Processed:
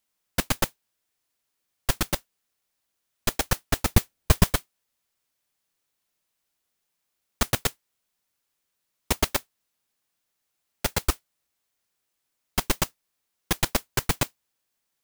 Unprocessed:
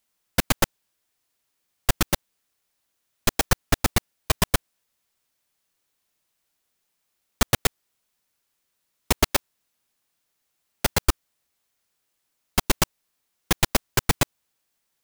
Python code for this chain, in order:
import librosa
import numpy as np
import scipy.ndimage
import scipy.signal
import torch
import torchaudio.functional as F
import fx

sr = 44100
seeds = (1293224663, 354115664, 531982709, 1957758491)

y = fx.low_shelf(x, sr, hz=430.0, db=10.5, at=(3.89, 4.5))
y = fx.mod_noise(y, sr, seeds[0], snr_db=12)
y = y * 10.0 ** (-3.5 / 20.0)